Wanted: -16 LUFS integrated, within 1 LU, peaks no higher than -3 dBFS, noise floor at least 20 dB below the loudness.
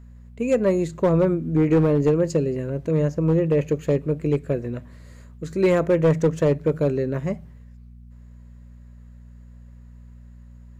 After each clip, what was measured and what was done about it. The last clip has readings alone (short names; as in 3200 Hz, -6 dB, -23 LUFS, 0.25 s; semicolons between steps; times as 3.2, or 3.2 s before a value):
clipped 1.0%; flat tops at -12.0 dBFS; hum 60 Hz; harmonics up to 240 Hz; hum level -43 dBFS; loudness -22.0 LUFS; peak -12.0 dBFS; loudness target -16.0 LUFS
-> clip repair -12 dBFS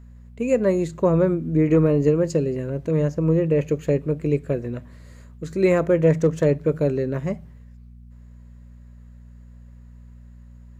clipped 0.0%; hum 60 Hz; harmonics up to 240 Hz; hum level -42 dBFS
-> de-hum 60 Hz, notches 4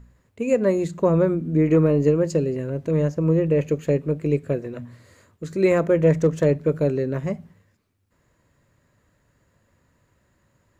hum none; loudness -21.5 LUFS; peak -6.5 dBFS; loudness target -16.0 LUFS
-> gain +5.5 dB; limiter -3 dBFS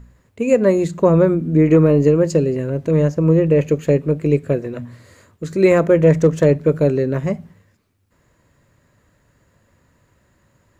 loudness -16.0 LUFS; peak -3.0 dBFS; noise floor -61 dBFS